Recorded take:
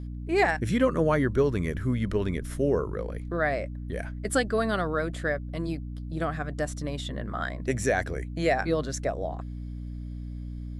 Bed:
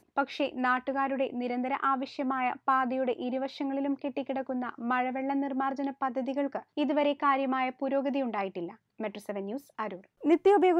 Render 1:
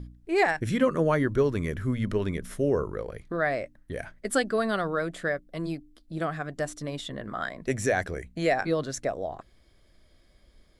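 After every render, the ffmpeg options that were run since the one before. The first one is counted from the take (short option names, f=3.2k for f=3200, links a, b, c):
-af "bandreject=f=60:t=h:w=4,bandreject=f=120:t=h:w=4,bandreject=f=180:t=h:w=4,bandreject=f=240:t=h:w=4,bandreject=f=300:t=h:w=4"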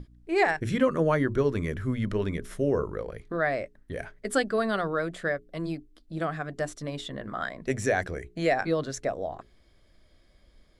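-af "highshelf=f=10k:g=-7.5,bandreject=f=60:t=h:w=6,bandreject=f=120:t=h:w=6,bandreject=f=180:t=h:w=6,bandreject=f=240:t=h:w=6,bandreject=f=300:t=h:w=6,bandreject=f=360:t=h:w=6,bandreject=f=420:t=h:w=6"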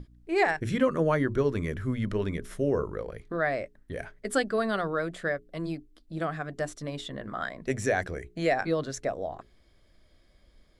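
-af "volume=-1dB"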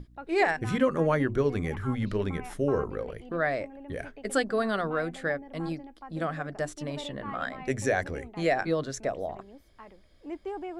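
-filter_complex "[1:a]volume=-14.5dB[a];[0:a][a]amix=inputs=2:normalize=0"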